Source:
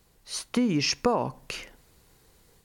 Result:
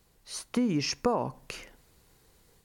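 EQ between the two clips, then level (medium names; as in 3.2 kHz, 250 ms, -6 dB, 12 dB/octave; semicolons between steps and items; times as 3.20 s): dynamic bell 3.3 kHz, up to -5 dB, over -42 dBFS, Q 0.87; -2.5 dB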